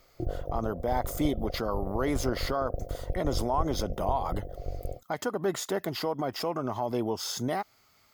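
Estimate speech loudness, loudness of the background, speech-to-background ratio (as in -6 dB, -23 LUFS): -31.5 LUFS, -38.0 LUFS, 6.5 dB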